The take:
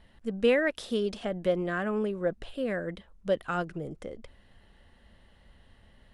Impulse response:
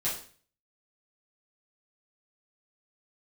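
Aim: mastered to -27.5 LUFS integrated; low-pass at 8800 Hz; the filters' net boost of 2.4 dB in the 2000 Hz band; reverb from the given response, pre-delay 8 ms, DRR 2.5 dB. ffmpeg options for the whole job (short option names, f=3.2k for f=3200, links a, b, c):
-filter_complex "[0:a]lowpass=8.8k,equalizer=f=2k:t=o:g=3,asplit=2[a][b];[1:a]atrim=start_sample=2205,adelay=8[c];[b][c]afir=irnorm=-1:irlink=0,volume=-8.5dB[d];[a][d]amix=inputs=2:normalize=0,volume=1dB"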